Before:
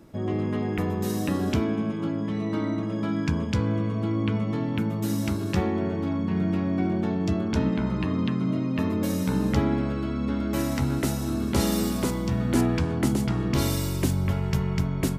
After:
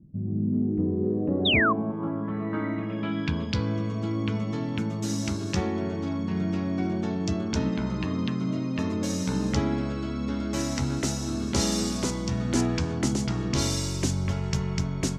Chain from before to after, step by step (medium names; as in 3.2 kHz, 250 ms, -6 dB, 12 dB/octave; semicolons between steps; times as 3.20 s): low-pass sweep 170 Hz -> 6.3 kHz, 0.23–3.88 s; treble shelf 6.1 kHz +5 dB; painted sound fall, 1.45–1.73 s, 1–3.9 kHz -20 dBFS; trim -2.5 dB